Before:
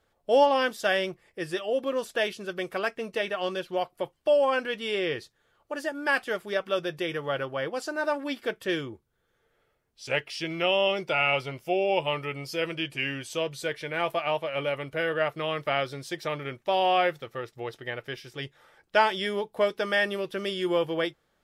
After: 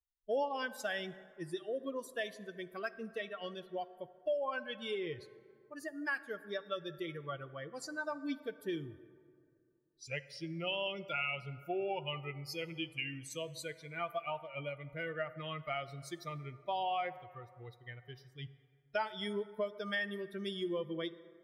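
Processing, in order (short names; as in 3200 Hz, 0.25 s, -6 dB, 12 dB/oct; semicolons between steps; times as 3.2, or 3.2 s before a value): per-bin expansion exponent 2; 10.08–10.66 bell 4200 Hz -3 dB -> -12 dB 2.9 oct; compressor 3:1, threshold -33 dBFS, peak gain reduction 12 dB; plate-style reverb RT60 2.3 s, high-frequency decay 0.45×, DRR 14.5 dB; gain -1.5 dB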